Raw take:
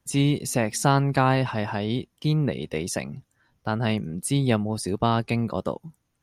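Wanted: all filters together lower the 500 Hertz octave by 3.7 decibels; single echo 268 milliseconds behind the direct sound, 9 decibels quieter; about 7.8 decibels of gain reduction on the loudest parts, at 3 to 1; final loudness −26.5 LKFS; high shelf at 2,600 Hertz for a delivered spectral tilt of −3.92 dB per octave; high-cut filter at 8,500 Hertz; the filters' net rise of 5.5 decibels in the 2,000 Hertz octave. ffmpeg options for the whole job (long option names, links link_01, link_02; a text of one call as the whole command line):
ffmpeg -i in.wav -af "lowpass=8500,equalizer=frequency=500:width_type=o:gain=-5.5,equalizer=frequency=2000:width_type=o:gain=3.5,highshelf=frequency=2600:gain=8.5,acompressor=threshold=-26dB:ratio=3,aecho=1:1:268:0.355,volume=2.5dB" out.wav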